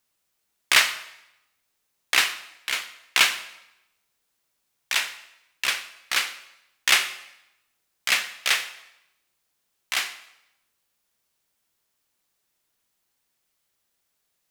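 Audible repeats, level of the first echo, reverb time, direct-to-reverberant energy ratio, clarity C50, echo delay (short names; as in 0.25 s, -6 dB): none, none, 0.85 s, 11.5 dB, 12.5 dB, none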